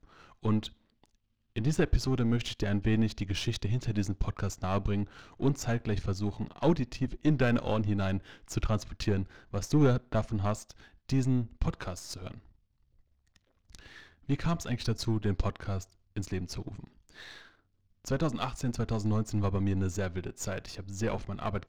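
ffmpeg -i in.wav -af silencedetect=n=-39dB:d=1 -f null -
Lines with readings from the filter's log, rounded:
silence_start: 12.37
silence_end: 13.75 | silence_duration: 1.38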